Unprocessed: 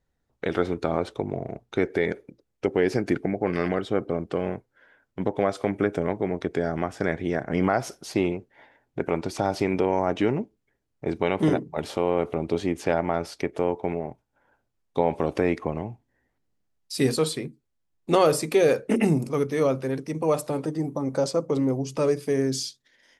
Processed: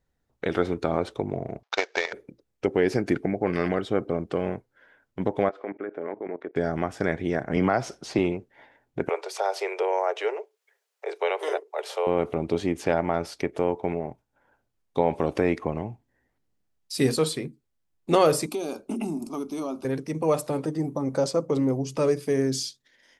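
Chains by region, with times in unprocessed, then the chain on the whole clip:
0:01.63–0:02.13: variable-slope delta modulation 32 kbit/s + high-pass filter 640 Hz 24 dB per octave + transient designer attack +12 dB, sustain −4 dB
0:05.49–0:06.56: Chebyshev band-pass filter 340–1,900 Hz + output level in coarse steps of 16 dB
0:07.56–0:08.19: low-pass filter 7,100 Hz + multiband upward and downward compressor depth 40%
0:09.09–0:12.07: Butterworth high-pass 400 Hz 72 dB per octave + one half of a high-frequency compander encoder only
0:18.46–0:19.85: phaser with its sweep stopped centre 490 Hz, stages 6 + downward compressor 3 to 1, threshold −27 dBFS
whole clip: no processing

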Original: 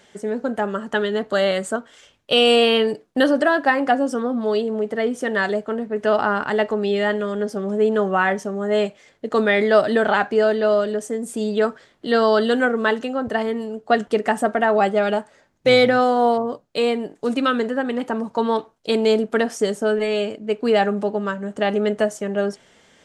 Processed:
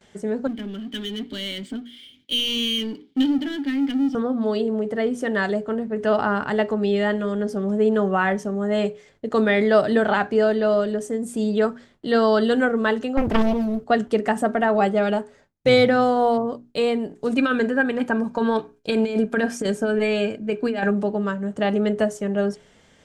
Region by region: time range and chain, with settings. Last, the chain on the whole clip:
0:00.47–0:04.15: formant filter i + flat-topped bell 4,000 Hz +10 dB 1 octave + power curve on the samples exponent 0.7
0:13.17–0:13.84: mu-law and A-law mismatch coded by mu + low-shelf EQ 340 Hz +6.5 dB + highs frequency-modulated by the lows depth 0.94 ms
0:17.38–0:20.91: compressor whose output falls as the input rises −19 dBFS, ratio −0.5 + hollow resonant body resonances 1,600/2,400 Hz, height 13 dB
whole clip: mains-hum notches 60/120/180/240/300/360/420 Hz; noise gate with hold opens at −44 dBFS; low-shelf EQ 200 Hz +11.5 dB; level −3 dB

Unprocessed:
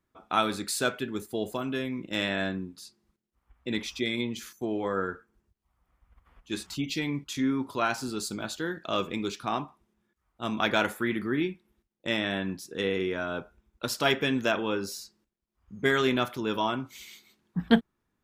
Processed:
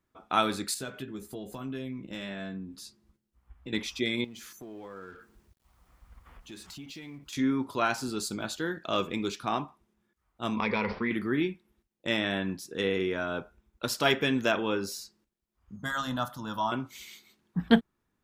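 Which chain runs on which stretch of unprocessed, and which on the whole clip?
0:00.74–0:03.73: low-shelf EQ 220 Hz +7.5 dB + downward compressor 2.5 to 1, threshold −41 dBFS + double-tracking delay 15 ms −6 dB
0:04.24–0:07.33: mu-law and A-law mismatch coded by mu + downward compressor 3 to 1, threshold −46 dBFS
0:10.56–0:11.11: EQ curve with evenly spaced ripples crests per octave 0.88, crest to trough 15 dB + downward compressor 3 to 1, threshold −25 dBFS + bad sample-rate conversion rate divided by 4×, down none, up filtered
0:15.76–0:16.72: phaser with its sweep stopped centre 960 Hz, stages 4 + hum removal 135.7 Hz, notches 6
whole clip: no processing

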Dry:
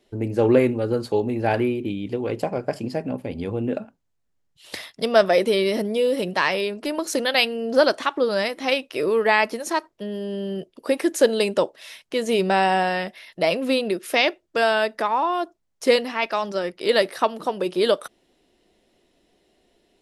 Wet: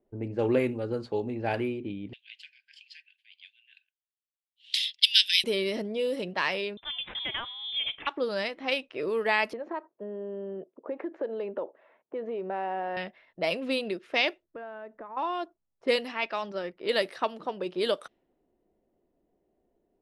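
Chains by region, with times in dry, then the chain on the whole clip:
0:02.13–0:05.44: linear-phase brick-wall high-pass 1,500 Hz + high shelf with overshoot 2,300 Hz +12 dB, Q 3
0:06.77–0:08.07: downward compressor 12 to 1, threshold −20 dBFS + bad sample-rate conversion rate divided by 4×, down none, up hold + voice inversion scrambler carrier 3,800 Hz
0:09.53–0:12.97: tilt shelving filter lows +7 dB, about 1,500 Hz + downward compressor 4 to 1, threshold −20 dBFS + band-pass filter 340–2,200 Hz
0:14.44–0:15.17: downward compressor 3 to 1, threshold −30 dBFS + high-frequency loss of the air 360 metres + notch filter 810 Hz, Q 14
whole clip: low-pass that shuts in the quiet parts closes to 850 Hz, open at −16 dBFS; dynamic equaliser 2,700 Hz, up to +4 dB, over −35 dBFS, Q 1.3; level −8.5 dB

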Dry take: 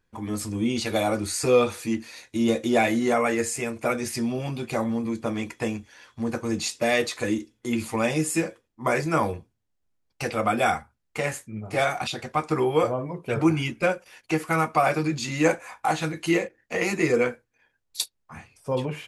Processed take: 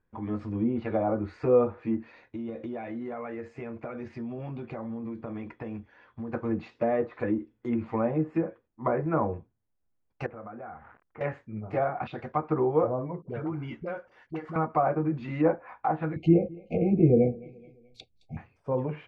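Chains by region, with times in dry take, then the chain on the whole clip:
0:02.12–0:06.33: downward compressor 8 to 1, threshold −30 dBFS + high-frequency loss of the air 95 metres
0:10.26–0:11.21: spike at every zero crossing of −21.5 dBFS + low-pass filter 1,700 Hz 24 dB per octave + downward compressor 3 to 1, threshold −42 dBFS
0:13.22–0:14.56: notch filter 2,500 Hz, Q 6.7 + downward compressor 3 to 1, threshold −30 dBFS + all-pass dispersion highs, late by 58 ms, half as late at 500 Hz
0:16.16–0:18.37: linear-phase brick-wall band-stop 800–2,100 Hz + bass and treble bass +14 dB, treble +3 dB + repeating echo 214 ms, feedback 45%, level −23.5 dB
whole clip: treble cut that deepens with the level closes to 1,100 Hz, closed at −20.5 dBFS; low-pass filter 1,600 Hz 12 dB per octave; level −2 dB

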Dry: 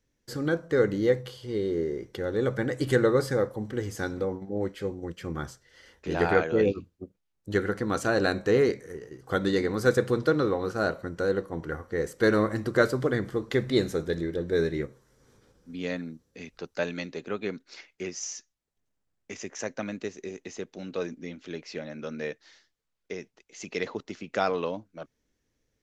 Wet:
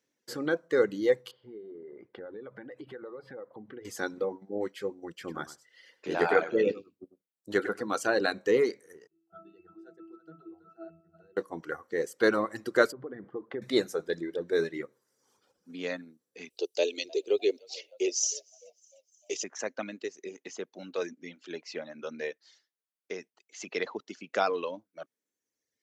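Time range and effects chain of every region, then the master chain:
0:01.31–0:03.85: downward compressor 10 to 1, threshold −35 dBFS + high-frequency loss of the air 410 metres
0:05.11–0:07.85: notch filter 6,200 Hz, Q 22 + single-tap delay 98 ms −7.5 dB
0:09.07–0:11.37: high-shelf EQ 3,900 Hz +10.5 dB + resonances in every octave E, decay 0.73 s + single-tap delay 327 ms −10 dB
0:12.92–0:13.62: low-pass filter 1,300 Hz + downward compressor 5 to 1, threshold −29 dBFS
0:16.50–0:19.44: drawn EQ curve 110 Hz 0 dB, 160 Hz −24 dB, 390 Hz +11 dB, 1,500 Hz −18 dB, 2,900 Hz +8 dB + echo with shifted repeats 304 ms, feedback 45%, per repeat +57 Hz, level −19 dB
0:20.69–0:21.10: high-shelf EQ 7,400 Hz +9.5 dB + one half of a high-frequency compander decoder only
whole clip: reverb reduction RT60 1.3 s; high-pass filter 280 Hz 12 dB per octave

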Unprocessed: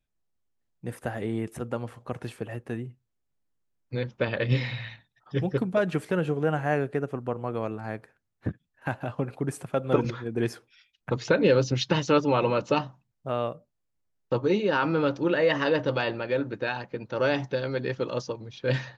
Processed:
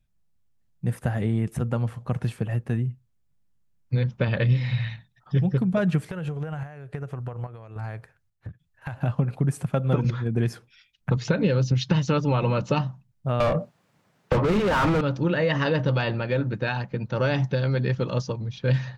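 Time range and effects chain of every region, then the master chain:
0:06.09–0:08.97: parametric band 220 Hz −11.5 dB 1 octave + downward compressor 10 to 1, threshold −34 dBFS + square-wave tremolo 1.2 Hz, depth 60%, duty 65%
0:13.40–0:15.01: high-pass filter 130 Hz + mid-hump overdrive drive 37 dB, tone 1,100 Hz, clips at −10.5 dBFS
whole clip: low shelf with overshoot 230 Hz +8.5 dB, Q 1.5; downward compressor 5 to 1, threshold −21 dBFS; level +2.5 dB

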